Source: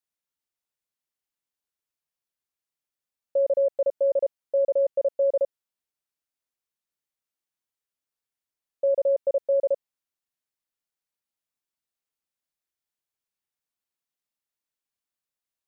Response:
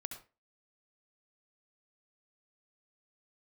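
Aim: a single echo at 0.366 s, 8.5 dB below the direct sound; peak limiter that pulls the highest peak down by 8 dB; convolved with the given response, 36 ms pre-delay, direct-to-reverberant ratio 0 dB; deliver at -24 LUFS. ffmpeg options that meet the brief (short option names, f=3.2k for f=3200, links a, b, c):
-filter_complex "[0:a]alimiter=level_in=1.5dB:limit=-24dB:level=0:latency=1,volume=-1.5dB,aecho=1:1:366:0.376,asplit=2[a][b];[1:a]atrim=start_sample=2205,adelay=36[c];[b][c]afir=irnorm=-1:irlink=0,volume=2dB[d];[a][d]amix=inputs=2:normalize=0,volume=6.5dB"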